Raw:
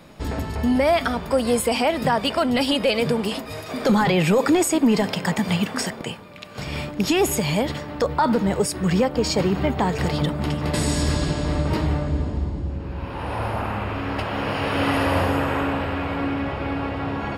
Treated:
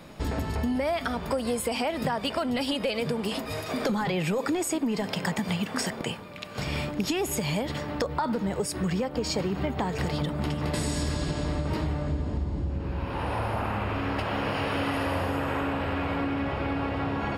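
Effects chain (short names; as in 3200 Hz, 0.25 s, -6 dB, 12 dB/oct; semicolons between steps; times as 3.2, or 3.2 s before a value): compressor, threshold -25 dBFS, peak gain reduction 11 dB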